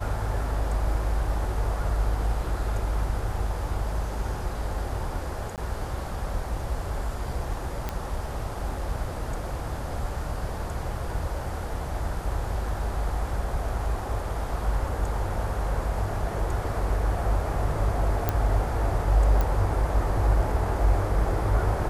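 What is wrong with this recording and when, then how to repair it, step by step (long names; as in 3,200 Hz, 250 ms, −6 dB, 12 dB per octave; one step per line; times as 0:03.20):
0:05.56–0:05.58: drop-out 18 ms
0:07.89: click −15 dBFS
0:18.29: click −10 dBFS
0:19.41: click −13 dBFS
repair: click removal
repair the gap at 0:05.56, 18 ms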